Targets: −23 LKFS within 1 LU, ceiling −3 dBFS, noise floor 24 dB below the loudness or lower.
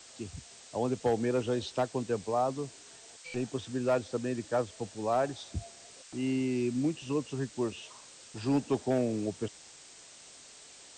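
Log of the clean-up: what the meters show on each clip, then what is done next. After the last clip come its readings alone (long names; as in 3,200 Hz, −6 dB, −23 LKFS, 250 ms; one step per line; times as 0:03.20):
share of clipped samples 0.3%; peaks flattened at −20.5 dBFS; background noise floor −53 dBFS; target noise floor −57 dBFS; integrated loudness −32.5 LKFS; sample peak −20.5 dBFS; target loudness −23.0 LKFS
→ clipped peaks rebuilt −20.5 dBFS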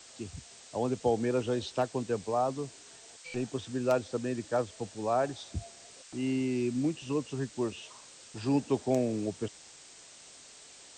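share of clipped samples 0.0%; background noise floor −53 dBFS; target noise floor −57 dBFS
→ broadband denoise 6 dB, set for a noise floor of −53 dBFS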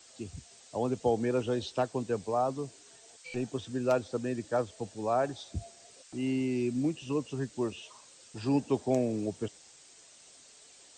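background noise floor −57 dBFS; integrated loudness −32.5 LKFS; sample peak −14.0 dBFS; target loudness −23.0 LKFS
→ level +9.5 dB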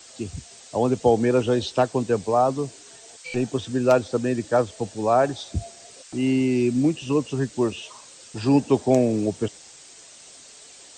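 integrated loudness −23.0 LKFS; sample peak −4.5 dBFS; background noise floor −47 dBFS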